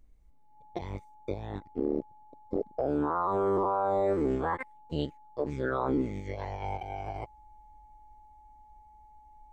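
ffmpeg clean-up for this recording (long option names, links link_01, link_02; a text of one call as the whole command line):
ffmpeg -i in.wav -af "bandreject=frequency=850:width=30" out.wav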